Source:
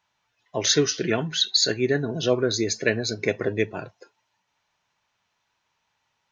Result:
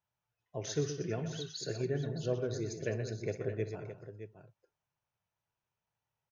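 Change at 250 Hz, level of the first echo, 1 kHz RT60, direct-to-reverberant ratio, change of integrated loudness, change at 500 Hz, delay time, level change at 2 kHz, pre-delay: −12.5 dB, −14.5 dB, no reverb audible, no reverb audible, −14.0 dB, −11.5 dB, 61 ms, −19.0 dB, no reverb audible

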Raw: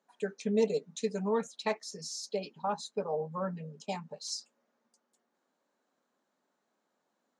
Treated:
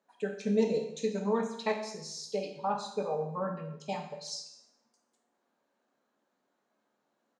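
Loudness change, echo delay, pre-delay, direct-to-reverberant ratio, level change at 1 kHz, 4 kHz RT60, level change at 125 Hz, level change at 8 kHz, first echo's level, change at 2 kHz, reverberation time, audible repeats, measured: +1.0 dB, 207 ms, 14 ms, 3.0 dB, +2.0 dB, 0.70 s, +1.5 dB, −2.5 dB, −22.0 dB, +1.0 dB, 0.70 s, 1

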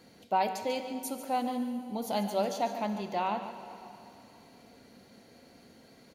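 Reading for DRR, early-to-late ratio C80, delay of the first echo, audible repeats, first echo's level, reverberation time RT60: 7.0 dB, 8.0 dB, 144 ms, 1, −12.0 dB, 2.9 s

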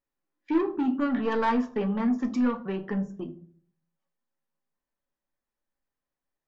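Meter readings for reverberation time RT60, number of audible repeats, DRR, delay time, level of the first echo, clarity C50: 0.50 s, no echo audible, 6.0 dB, no echo audible, no echo audible, 16.0 dB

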